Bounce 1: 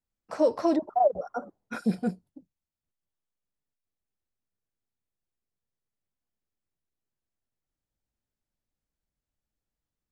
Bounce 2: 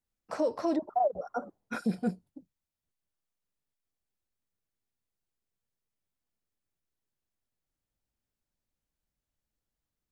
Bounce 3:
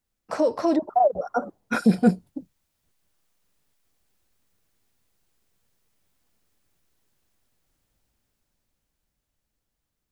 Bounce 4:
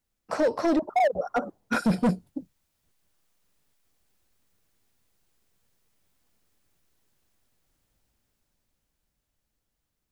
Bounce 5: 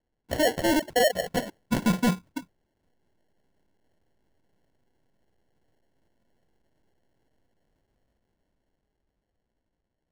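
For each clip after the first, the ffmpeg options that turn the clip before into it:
-af "alimiter=limit=-19.5dB:level=0:latency=1:release=342"
-af "dynaudnorm=f=260:g=17:m=10dB,volume=7dB"
-af "asoftclip=type=hard:threshold=-18dB"
-af "acrusher=samples=36:mix=1:aa=0.000001"

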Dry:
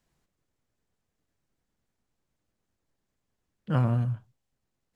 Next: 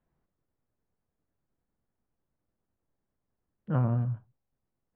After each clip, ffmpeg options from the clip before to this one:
-af "lowpass=1.4k,volume=-2dB"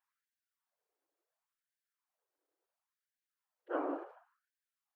-filter_complex "[0:a]asplit=4[a][b][c][d];[b]adelay=152,afreqshift=47,volume=-18.5dB[e];[c]adelay=304,afreqshift=94,volume=-27.9dB[f];[d]adelay=456,afreqshift=141,volume=-37.2dB[g];[a][e][f][g]amix=inputs=4:normalize=0,afftfilt=real='hypot(re,im)*cos(2*PI*random(0))':imag='hypot(re,im)*sin(2*PI*random(1))':win_size=512:overlap=0.75,afftfilt=real='re*gte(b*sr/1024,270*pow(1500/270,0.5+0.5*sin(2*PI*0.71*pts/sr)))':imag='im*gte(b*sr/1024,270*pow(1500/270,0.5+0.5*sin(2*PI*0.71*pts/sr)))':win_size=1024:overlap=0.75,volume=5.5dB"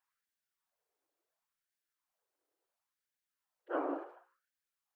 -af "bandreject=f=60:t=h:w=6,bandreject=f=120:t=h:w=6,bandreject=f=180:t=h:w=6,bandreject=f=240:t=h:w=6,bandreject=f=300:t=h:w=6,bandreject=f=360:t=h:w=6,bandreject=f=420:t=h:w=6,bandreject=f=480:t=h:w=6,bandreject=f=540:t=h:w=6,volume=1dB"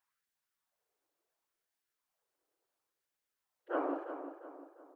-filter_complex "[0:a]asplit=2[a][b];[b]adelay=350,lowpass=f=2.2k:p=1,volume=-9dB,asplit=2[c][d];[d]adelay=350,lowpass=f=2.2k:p=1,volume=0.44,asplit=2[e][f];[f]adelay=350,lowpass=f=2.2k:p=1,volume=0.44,asplit=2[g][h];[h]adelay=350,lowpass=f=2.2k:p=1,volume=0.44,asplit=2[i][j];[j]adelay=350,lowpass=f=2.2k:p=1,volume=0.44[k];[a][c][e][g][i][k]amix=inputs=6:normalize=0,volume=1dB"

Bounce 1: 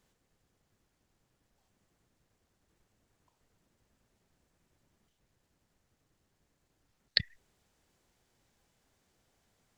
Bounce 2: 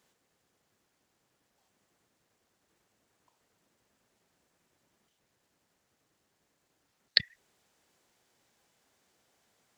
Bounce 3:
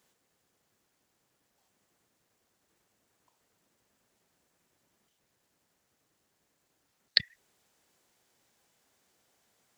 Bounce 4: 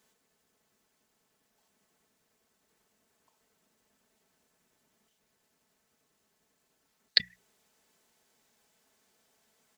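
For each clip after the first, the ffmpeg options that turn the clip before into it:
-af "highpass=f=330:p=1,volume=3.5dB"
-af "highshelf=f=8.4k:g=5.5,volume=-1dB"
-af "bandreject=f=60:t=h:w=6,bandreject=f=120:t=h:w=6,bandreject=f=180:t=h:w=6,aecho=1:1:4.6:0.48"

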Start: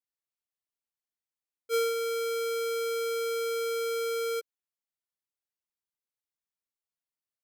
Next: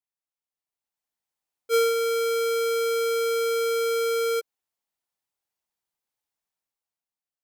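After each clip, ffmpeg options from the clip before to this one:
-af "equalizer=f=810:w=2.2:g=6.5,dynaudnorm=f=160:g=11:m=10dB,volume=-4.5dB"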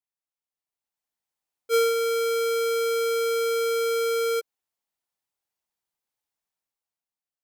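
-af anull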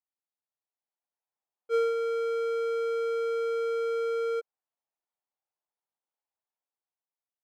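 -af "bandpass=f=720:t=q:w=1:csg=0,volume=-1.5dB"

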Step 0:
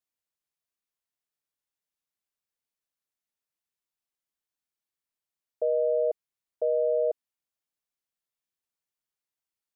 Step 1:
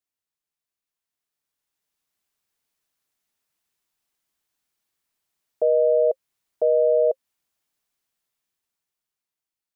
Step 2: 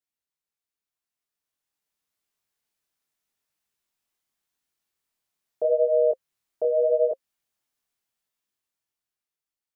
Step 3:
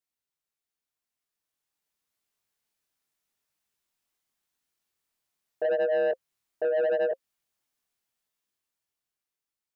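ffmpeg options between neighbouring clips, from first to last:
-af "alimiter=limit=-22.5dB:level=0:latency=1:release=194,bandreject=f=530:w=12,dynaudnorm=f=250:g=13:m=11dB"
-af "flanger=delay=19:depth=7.9:speed=0.83"
-af "asoftclip=type=tanh:threshold=-21dB"

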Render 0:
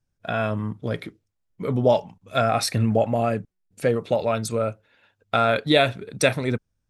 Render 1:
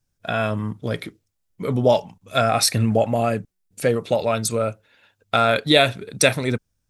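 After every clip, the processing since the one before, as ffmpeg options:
-af "highshelf=f=3.9k:g=8.5,volume=1.5dB"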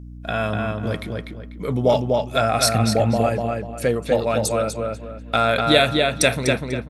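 -filter_complex "[0:a]aeval=exprs='val(0)+0.0178*(sin(2*PI*60*n/s)+sin(2*PI*2*60*n/s)/2+sin(2*PI*3*60*n/s)/3+sin(2*PI*4*60*n/s)/4+sin(2*PI*5*60*n/s)/5)':c=same,asplit=2[a][b];[b]adelay=246,lowpass=f=4k:p=1,volume=-3dB,asplit=2[c][d];[d]adelay=246,lowpass=f=4k:p=1,volume=0.31,asplit=2[e][f];[f]adelay=246,lowpass=f=4k:p=1,volume=0.31,asplit=2[g][h];[h]adelay=246,lowpass=f=4k:p=1,volume=0.31[i];[c][e][g][i]amix=inputs=4:normalize=0[j];[a][j]amix=inputs=2:normalize=0,volume=-1dB"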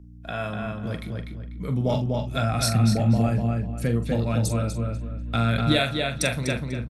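-filter_complex "[0:a]acrossover=split=140[a][b];[a]asoftclip=type=tanh:threshold=-35.5dB[c];[c][b]amix=inputs=2:normalize=0,asubboost=boost=9.5:cutoff=180,asplit=2[d][e];[e]adelay=43,volume=-9dB[f];[d][f]amix=inputs=2:normalize=0,volume=-7dB"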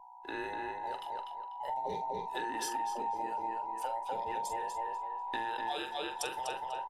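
-af "afftfilt=real='real(if(between(b,1,1008),(2*floor((b-1)/48)+1)*48-b,b),0)':imag='imag(if(between(b,1,1008),(2*floor((b-1)/48)+1)*48-b,b),0)*if(between(b,1,1008),-1,1)':win_size=2048:overlap=0.75,acompressor=threshold=-25dB:ratio=6,volume=-8dB"

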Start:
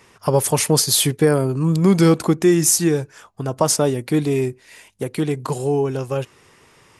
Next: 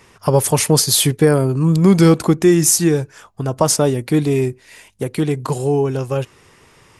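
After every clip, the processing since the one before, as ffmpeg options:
-af "lowshelf=f=91:g=7,volume=2dB"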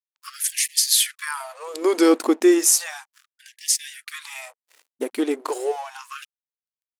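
-af "aeval=exprs='sgn(val(0))*max(abs(val(0))-0.0133,0)':c=same,afftfilt=real='re*gte(b*sr/1024,220*pow(1700/220,0.5+0.5*sin(2*PI*0.34*pts/sr)))':imag='im*gte(b*sr/1024,220*pow(1700/220,0.5+0.5*sin(2*PI*0.34*pts/sr)))':win_size=1024:overlap=0.75,volume=-2dB"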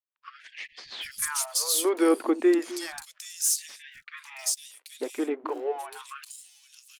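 -filter_complex "[0:a]acrossover=split=670|1400[a][b][c];[c]asoftclip=type=tanh:threshold=-13dB[d];[a][b][d]amix=inputs=3:normalize=0,acrossover=split=220|3100[e][f][g];[e]adelay=260[h];[g]adelay=780[i];[h][f][i]amix=inputs=3:normalize=0,volume=-4.5dB"

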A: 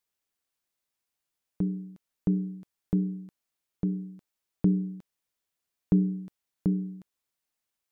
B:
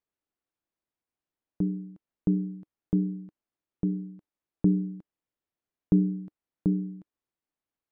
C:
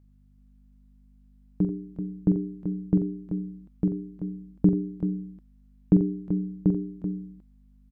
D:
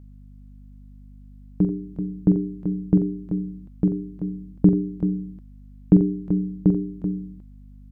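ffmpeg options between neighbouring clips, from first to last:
-af "lowpass=f=1k:p=1,equalizer=f=310:t=o:w=0.41:g=5"
-af "aeval=exprs='val(0)+0.001*(sin(2*PI*50*n/s)+sin(2*PI*2*50*n/s)/2+sin(2*PI*3*50*n/s)/3+sin(2*PI*4*50*n/s)/4+sin(2*PI*5*50*n/s)/5)':c=same,aecho=1:1:45|88|384:0.447|0.266|0.376,volume=3.5dB"
-af "aeval=exprs='val(0)+0.00251*(sin(2*PI*50*n/s)+sin(2*PI*2*50*n/s)/2+sin(2*PI*3*50*n/s)/3+sin(2*PI*4*50*n/s)/4+sin(2*PI*5*50*n/s)/5)':c=same,volume=4.5dB"

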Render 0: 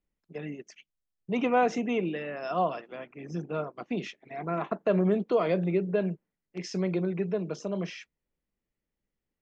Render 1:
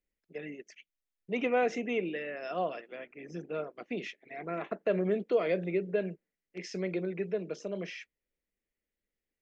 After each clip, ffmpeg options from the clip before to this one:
-af "equalizer=f=125:t=o:w=1:g=-8,equalizer=f=500:t=o:w=1:g=5,equalizer=f=1k:t=o:w=1:g=-8,equalizer=f=2k:t=o:w=1:g=8,volume=-5dB"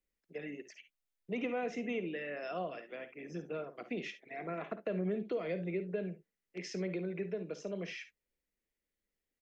-filter_complex "[0:a]acrossover=split=220[a][b];[b]acompressor=threshold=-37dB:ratio=2.5[c];[a][c]amix=inputs=2:normalize=0,aecho=1:1:55|69:0.224|0.158,volume=-1dB"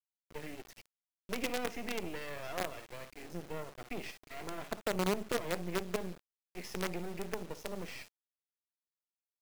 -af "asoftclip=type=tanh:threshold=-26dB,acrusher=bits=6:dc=4:mix=0:aa=0.000001,volume=2.5dB"

